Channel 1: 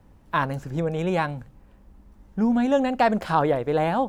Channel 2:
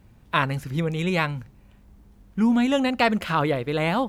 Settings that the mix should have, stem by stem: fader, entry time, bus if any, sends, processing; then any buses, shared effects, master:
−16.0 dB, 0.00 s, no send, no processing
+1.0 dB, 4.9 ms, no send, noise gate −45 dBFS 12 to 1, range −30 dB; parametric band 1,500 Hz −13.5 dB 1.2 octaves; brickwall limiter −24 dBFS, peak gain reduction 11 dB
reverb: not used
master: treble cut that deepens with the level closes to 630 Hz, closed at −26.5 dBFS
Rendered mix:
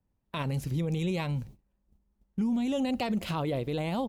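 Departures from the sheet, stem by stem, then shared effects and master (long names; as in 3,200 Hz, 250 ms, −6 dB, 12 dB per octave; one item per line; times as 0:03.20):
stem 1 −16.0 dB → −26.0 dB
master: missing treble cut that deepens with the level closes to 630 Hz, closed at −26.5 dBFS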